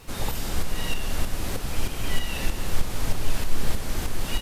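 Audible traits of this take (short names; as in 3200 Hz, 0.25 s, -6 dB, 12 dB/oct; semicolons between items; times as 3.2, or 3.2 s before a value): a quantiser's noise floor 10-bit, dither none; tremolo saw up 3.2 Hz, depth 50%; Vorbis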